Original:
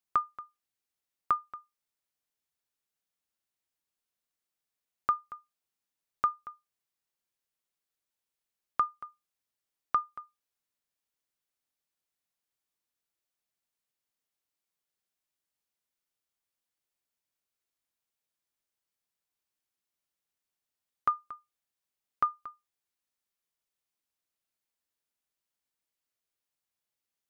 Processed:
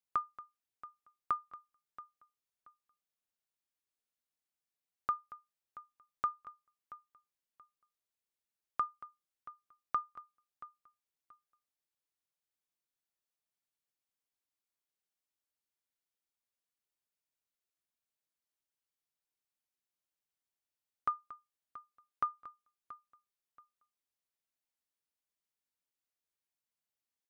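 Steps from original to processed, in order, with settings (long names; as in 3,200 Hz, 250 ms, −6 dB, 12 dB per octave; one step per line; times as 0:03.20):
repeating echo 679 ms, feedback 26%, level −17 dB
level −6 dB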